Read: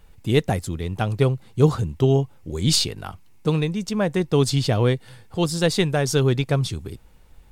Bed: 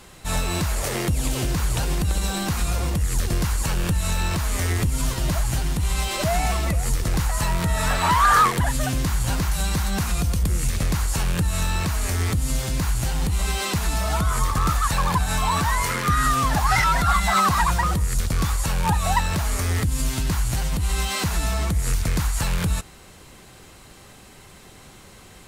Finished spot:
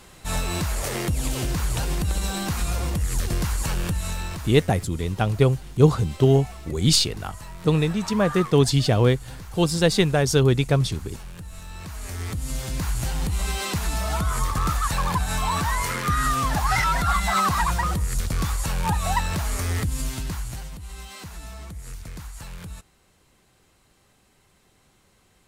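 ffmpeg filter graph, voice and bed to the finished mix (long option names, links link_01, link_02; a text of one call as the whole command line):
ffmpeg -i stem1.wav -i stem2.wav -filter_complex "[0:a]adelay=4200,volume=1dB[link_01];[1:a]volume=12.5dB,afade=type=out:start_time=3.74:duration=0.94:silence=0.177828,afade=type=in:start_time=11.67:duration=1.32:silence=0.188365,afade=type=out:start_time=19.8:duration=1:silence=0.237137[link_02];[link_01][link_02]amix=inputs=2:normalize=0" out.wav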